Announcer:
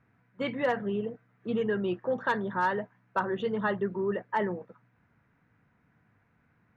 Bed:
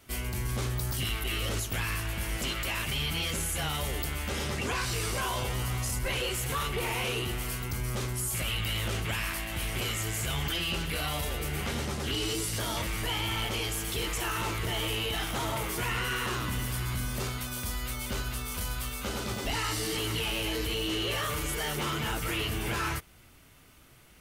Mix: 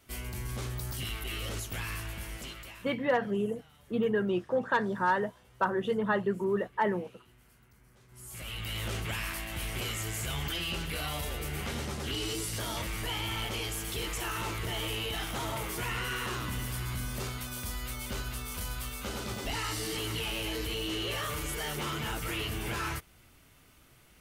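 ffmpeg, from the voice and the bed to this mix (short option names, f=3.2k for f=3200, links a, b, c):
-filter_complex "[0:a]adelay=2450,volume=0.5dB[a];[1:a]volume=21dB,afade=t=out:st=2.02:d=0.94:silence=0.0630957,afade=t=in:st=8.08:d=0.82:silence=0.0501187[b];[a][b]amix=inputs=2:normalize=0"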